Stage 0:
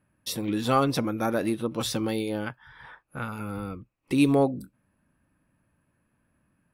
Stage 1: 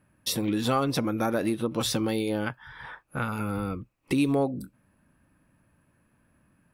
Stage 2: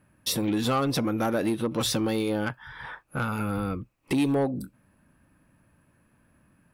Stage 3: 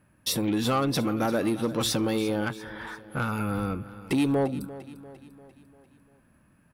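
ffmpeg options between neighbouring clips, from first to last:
ffmpeg -i in.wav -af "acompressor=threshold=-30dB:ratio=2.5,volume=5dB" out.wav
ffmpeg -i in.wav -af "asoftclip=type=tanh:threshold=-20.5dB,volume=2.5dB" out.wav
ffmpeg -i in.wav -af "aecho=1:1:346|692|1038|1384|1730:0.158|0.0824|0.0429|0.0223|0.0116" out.wav

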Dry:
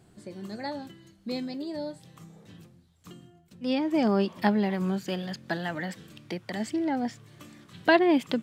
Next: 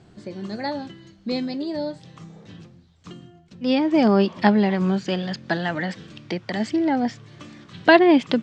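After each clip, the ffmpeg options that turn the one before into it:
ffmpeg -i in.wav -af "lowpass=frequency=6300:width=0.5412,lowpass=frequency=6300:width=1.3066,volume=7dB" out.wav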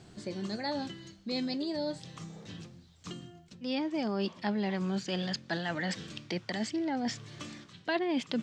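ffmpeg -i in.wav -af "highshelf=frequency=3800:gain=10.5,areverse,acompressor=threshold=-28dB:ratio=4,areverse,volume=-3dB" out.wav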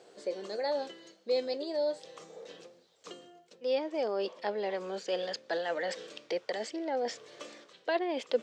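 ffmpeg -i in.wav -af "highpass=frequency=490:width_type=q:width=5.3,volume=-3dB" out.wav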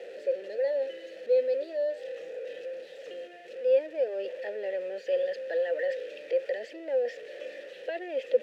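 ffmpeg -i in.wav -filter_complex "[0:a]aeval=exprs='val(0)+0.5*0.015*sgn(val(0))':channel_layout=same,asplit=3[link_01][link_02][link_03];[link_01]bandpass=frequency=530:width_type=q:width=8,volume=0dB[link_04];[link_02]bandpass=frequency=1840:width_type=q:width=8,volume=-6dB[link_05];[link_03]bandpass=frequency=2480:width_type=q:width=8,volume=-9dB[link_06];[link_04][link_05][link_06]amix=inputs=3:normalize=0,volume=6.5dB" out.wav

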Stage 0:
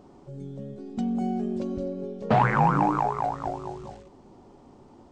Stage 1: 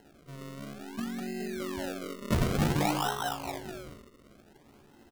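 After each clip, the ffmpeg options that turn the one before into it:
ffmpeg -i in.wav -af "aecho=1:1:14|76:0.668|0.447,acrusher=samples=37:mix=1:aa=0.000001:lfo=1:lforange=37:lforate=0.55,volume=-8dB" out.wav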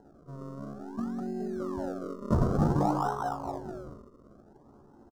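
ffmpeg -i in.wav -af "firequalizer=gain_entry='entry(1200,0);entry(2200,-27);entry(5400,-12);entry(12000,-21)':delay=0.05:min_phase=1,volume=2dB" out.wav

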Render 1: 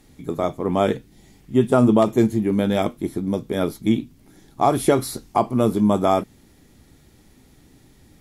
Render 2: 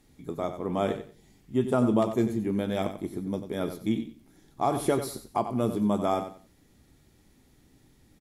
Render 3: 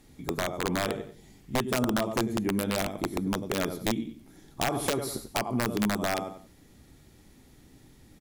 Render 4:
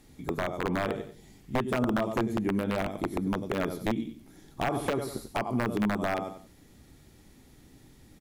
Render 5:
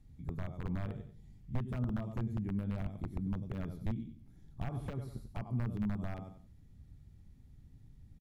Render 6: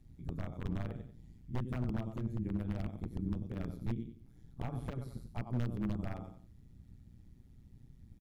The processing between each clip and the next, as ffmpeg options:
ffmpeg -i in.wav -af "aecho=1:1:92|184|276:0.316|0.0727|0.0167,volume=-8.5dB" out.wav
ffmpeg -i in.wav -af "acompressor=threshold=-30dB:ratio=4,aeval=exprs='(mod(15.8*val(0)+1,2)-1)/15.8':channel_layout=same,volume=5dB" out.wav
ffmpeg -i in.wav -filter_complex "[0:a]acrossover=split=2800[link_01][link_02];[link_02]acompressor=threshold=-43dB:ratio=4:attack=1:release=60[link_03];[link_01][link_03]amix=inputs=2:normalize=0" out.wav
ffmpeg -i in.wav -af "firequalizer=gain_entry='entry(100,0);entry(320,-20);entry(8300,-24)':delay=0.05:min_phase=1,volume=2.5dB" out.wav
ffmpeg -i in.wav -af "aeval=exprs='0.0376*(abs(mod(val(0)/0.0376+3,4)-2)-1)':channel_layout=same,tremolo=f=120:d=0.788,volume=3.5dB" out.wav

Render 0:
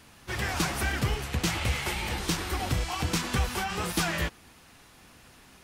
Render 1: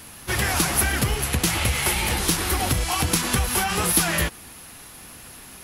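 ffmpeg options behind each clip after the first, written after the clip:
ffmpeg -i in.wav -af "highshelf=frequency=7600:gain=7.5,acompressor=threshold=-27dB:ratio=6,equalizer=frequency=11000:width=7.8:gain=14.5,volume=8.5dB" out.wav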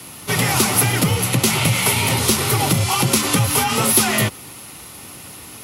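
ffmpeg -i in.wav -af "bandreject=frequency=1600:width=5.2,afreqshift=49,acontrast=37" out.wav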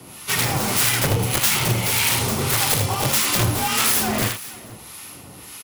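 ffmpeg -i in.wav -filter_complex "[0:a]aeval=exprs='(mod(3.55*val(0)+1,2)-1)/3.55':channel_layout=same,asplit=2[link_01][link_02];[link_02]aecho=0:1:43|78|478:0.266|0.473|0.106[link_03];[link_01][link_03]amix=inputs=2:normalize=0,acrossover=split=980[link_04][link_05];[link_04]aeval=exprs='val(0)*(1-0.7/2+0.7/2*cos(2*PI*1.7*n/s))':channel_layout=same[link_06];[link_05]aeval=exprs='val(0)*(1-0.7/2-0.7/2*cos(2*PI*1.7*n/s))':channel_layout=same[link_07];[link_06][link_07]amix=inputs=2:normalize=0" out.wav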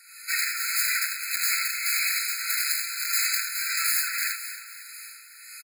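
ffmpeg -i in.wav -af "aecho=1:1:272|544|816|1088|1360:0.188|0.102|0.0549|0.0297|0.016,alimiter=limit=-10.5dB:level=0:latency=1:release=14,afftfilt=real='re*eq(mod(floor(b*sr/1024/1300),2),1)':imag='im*eq(mod(floor(b*sr/1024/1300),2),1)':win_size=1024:overlap=0.75" out.wav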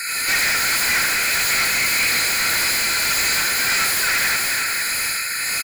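ffmpeg -i in.wav -filter_complex "[0:a]asplit=2[link_01][link_02];[link_02]highpass=frequency=720:poles=1,volume=36dB,asoftclip=type=tanh:threshold=-11dB[link_03];[link_01][link_03]amix=inputs=2:normalize=0,lowpass=frequency=5800:poles=1,volume=-6dB" out.wav

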